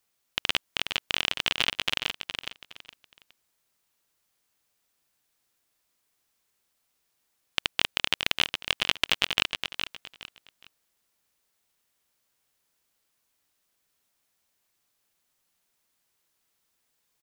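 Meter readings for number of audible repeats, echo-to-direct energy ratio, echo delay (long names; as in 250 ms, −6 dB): 3, −6.5 dB, 415 ms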